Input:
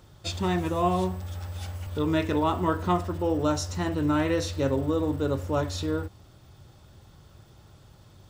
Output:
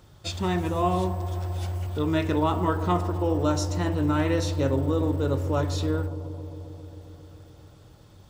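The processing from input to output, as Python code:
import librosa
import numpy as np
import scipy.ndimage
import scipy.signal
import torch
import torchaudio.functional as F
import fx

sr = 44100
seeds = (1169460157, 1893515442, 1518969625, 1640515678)

y = fx.echo_bbd(x, sr, ms=133, stages=1024, feedback_pct=82, wet_db=-13.5)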